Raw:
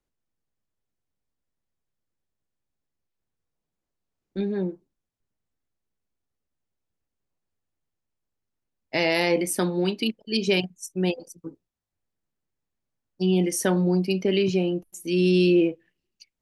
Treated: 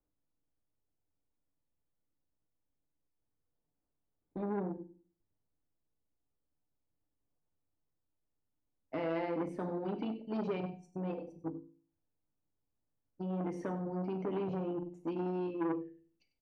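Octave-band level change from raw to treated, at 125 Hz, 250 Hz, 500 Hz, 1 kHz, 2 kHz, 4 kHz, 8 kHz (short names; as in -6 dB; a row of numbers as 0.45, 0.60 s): -14.0 dB, -13.0 dB, -13.5 dB, -6.5 dB, -20.5 dB, -28.5 dB, under -35 dB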